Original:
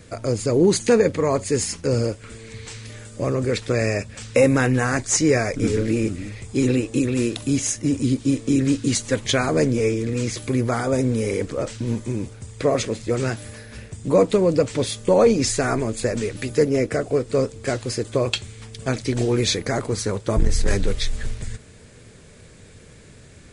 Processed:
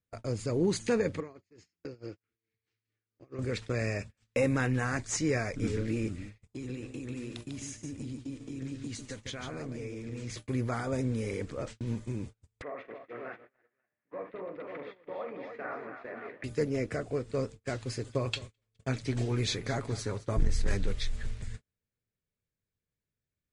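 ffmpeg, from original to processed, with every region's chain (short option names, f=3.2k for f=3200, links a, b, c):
-filter_complex "[0:a]asettb=1/sr,asplit=3[a][b][c];[a]atrim=end=1.204[d];[b]atrim=start=1.2:end=3.39,asetpts=PTS-STARTPTS,afade=t=in:d=0.004:c=qsin,afade=t=out:st=2.186:d=0.004:c=qsin,acompressor=threshold=-22dB:ratio=20:attack=3.2:release=140:knee=1:detection=peak,highpass=120,equalizer=f=140:t=q:w=4:g=-4,equalizer=f=220:t=q:w=4:g=-6,equalizer=f=340:t=q:w=4:g=7,equalizer=f=590:t=q:w=4:g=-8,equalizer=f=950:t=q:w=4:g=-7,equalizer=f=3.7k:t=q:w=4:g=-4,lowpass=f=5.5k:w=0.5412,lowpass=f=5.5k:w=1.3066,tremolo=f=4.6:d=0.59[e];[c]atrim=start=3.386[f];[d][e]acrossfade=d=0.004:c1=hsin:c2=qsin[g];[g][f]acrossfade=d=0.004:c1=qsin:c2=hsin,asettb=1/sr,asplit=3[h][i][j];[h]atrim=end=6.474[k];[i]atrim=start=6.47:end=10.3,asetpts=PTS-STARTPTS,afade=t=in:d=0.004:c=qsin,afade=t=out:st=3.826:d=0.004:c=qsin,acompressor=threshold=-25dB:ratio=10:attack=3.2:release=140:knee=1:detection=peak,aecho=1:1:147:0.501,atrim=end_sample=168903[l];[j]atrim=start=10.296[m];[k][l]acrossfade=d=0.004:c1=hsin:c2=qsin[n];[n][m]acrossfade=d=0.004:c1=qsin:c2=hsin,asettb=1/sr,asplit=3[o][p][q];[o]atrim=end=12.624[r];[p]atrim=start=12.62:end=16.44,asetpts=PTS-STARTPTS,afade=t=in:d=0.004:c=qsin,afade=t=out:st=3.816:d=0.004:c=qsin,acompressor=threshold=-26dB:ratio=4:attack=3.2:release=140:knee=1:detection=peak,highpass=390,equalizer=f=710:t=q:w=4:g=4,equalizer=f=1.2k:t=q:w=4:g=4,equalizer=f=1.9k:t=q:w=4:g=5,lowpass=f=2.3k:w=0.5412,lowpass=f=2.3k:w=1.3066,aecho=1:1:42|68|159|236|285|534:0.398|0.251|0.211|0.133|0.531|0.473,atrim=end_sample=168462[s];[q]atrim=start=16.436[t];[r][s]acrossfade=d=0.004:c1=hsin:c2=qsin[u];[u][t]acrossfade=d=0.004:c1=qsin:c2=hsin,asettb=1/sr,asplit=3[v][w][x];[v]atrim=end=17.814[y];[w]atrim=start=17.81:end=20.44,asetpts=PTS-STARTPTS,afade=t=in:d=0.004:c=qsin,afade=t=out:st=2.626:d=0.004:c=qsin,aecho=1:1:7.3:0.34,atrim=end_sample=115983,aecho=1:1:210|420|630:0.133|0.0547|0.0224,atrim=end_sample=115983[z];[x]atrim=start=20.436[aa];[y][z]acrossfade=d=0.004:c1=hsin:c2=qsin[ab];[ab][aa]acrossfade=d=0.004:c1=qsin:c2=hsin,agate=range=-35dB:threshold=-31dB:ratio=16:detection=peak,lowpass=f=4k:p=1,equalizer=f=460:w=0.66:g=-4.5,volume=-8dB"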